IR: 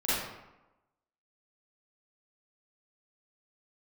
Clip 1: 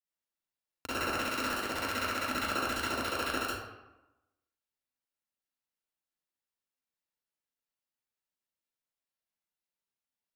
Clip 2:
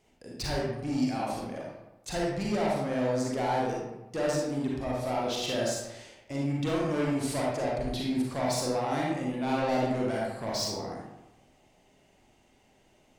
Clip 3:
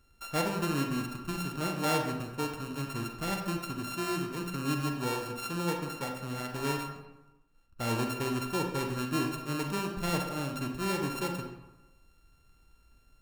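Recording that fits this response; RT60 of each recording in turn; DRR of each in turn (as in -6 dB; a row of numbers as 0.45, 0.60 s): 1; 1.0, 1.0, 1.0 s; -12.5, -4.0, 2.5 dB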